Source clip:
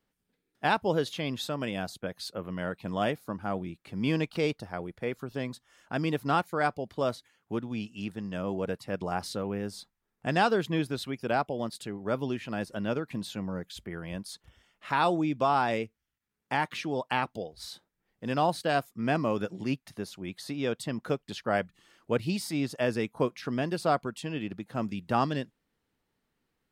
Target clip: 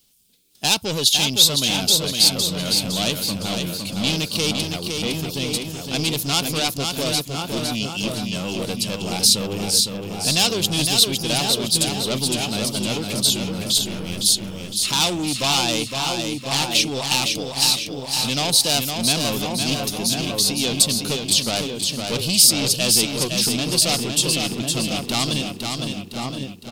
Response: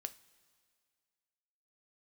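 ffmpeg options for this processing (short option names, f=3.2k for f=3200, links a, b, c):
-filter_complex "[0:a]lowshelf=f=350:g=8,asplit=2[a][b];[b]adelay=1050,volume=-7dB,highshelf=f=4k:g=-23.6[c];[a][c]amix=inputs=2:normalize=0,asoftclip=type=tanh:threshold=-24.5dB,aexciter=amount=15:drive=2.6:freq=2.7k,asplit=3[d][e][f];[d]afade=t=out:st=13.77:d=0.02[g];[e]aeval=exprs='max(val(0),0)':c=same,afade=t=in:st=13.77:d=0.02,afade=t=out:st=14.22:d=0.02[h];[f]afade=t=in:st=14.22:d=0.02[i];[g][h][i]amix=inputs=3:normalize=0,asplit=2[j][k];[k]aecho=0:1:510|1020|1530|2040|2550|3060:0.562|0.27|0.13|0.0622|0.0299|0.0143[l];[j][l]amix=inputs=2:normalize=0,volume=3dB"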